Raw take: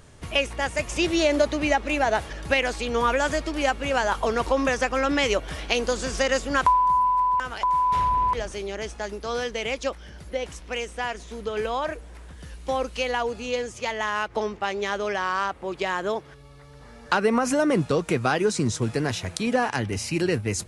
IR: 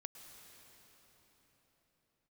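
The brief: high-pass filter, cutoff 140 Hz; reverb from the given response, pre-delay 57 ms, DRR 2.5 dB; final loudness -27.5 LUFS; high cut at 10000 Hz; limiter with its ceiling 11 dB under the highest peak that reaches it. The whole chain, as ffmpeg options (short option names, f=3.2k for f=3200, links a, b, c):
-filter_complex "[0:a]highpass=140,lowpass=10k,alimiter=limit=-16dB:level=0:latency=1,asplit=2[a][b];[1:a]atrim=start_sample=2205,adelay=57[c];[b][c]afir=irnorm=-1:irlink=0,volume=2dB[d];[a][d]amix=inputs=2:normalize=0,volume=-3.5dB"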